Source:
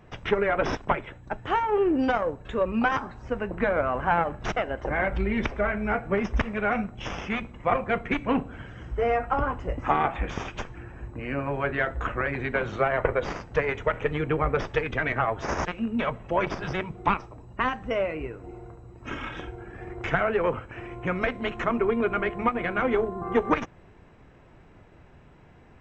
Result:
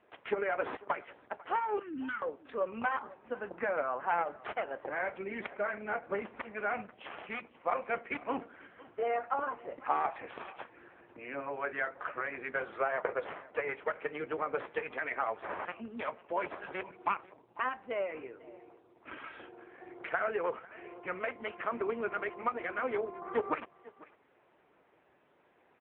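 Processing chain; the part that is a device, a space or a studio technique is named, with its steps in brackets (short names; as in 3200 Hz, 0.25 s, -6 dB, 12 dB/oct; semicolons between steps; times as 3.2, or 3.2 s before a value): 1.79–2.22 Chebyshev band-stop 290–1300 Hz, order 3; satellite phone (BPF 380–3300 Hz; echo 0.497 s -21 dB; gain -6 dB; AMR-NB 6.7 kbps 8000 Hz)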